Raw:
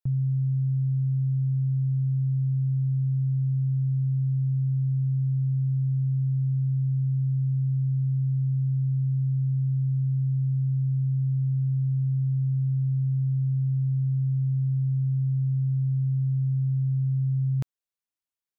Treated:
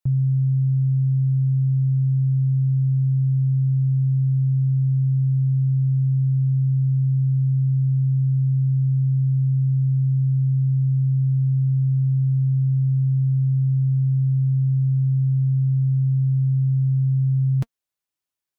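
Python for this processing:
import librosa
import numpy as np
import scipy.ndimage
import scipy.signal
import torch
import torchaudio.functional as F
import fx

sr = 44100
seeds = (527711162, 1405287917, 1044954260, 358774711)

y = fx.notch_comb(x, sr, f0_hz=230.0)
y = y * 10.0 ** (5.5 / 20.0)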